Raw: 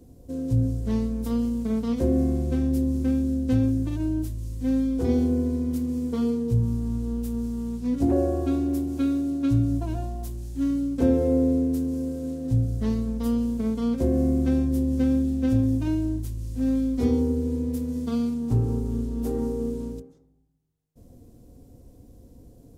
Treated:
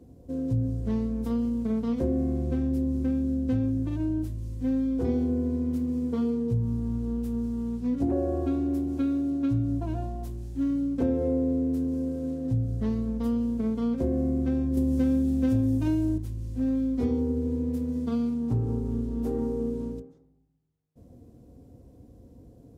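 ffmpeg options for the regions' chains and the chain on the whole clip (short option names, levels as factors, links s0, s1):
-filter_complex "[0:a]asettb=1/sr,asplit=3[s0][s1][s2];[s0]atrim=end=14.774[s3];[s1]atrim=start=14.77:end=16.18,asetpts=PTS-STARTPTS,afade=t=in:d=0.004:c=qsin,afade=t=out:st=1.406:d=0.004:c=qsin,acontrast=35,highshelf=f=6100:g=11[s4];[s2]atrim=start=16.176[s5];[s3][s4]acrossfade=d=0.004:c1=hsin:c2=qsin[s6];[s6][s5]acrossfade=d=0.004:c1=qsin:c2=hsin,highpass=56,highshelf=f=3700:g=-11,acompressor=threshold=0.0631:ratio=2.5"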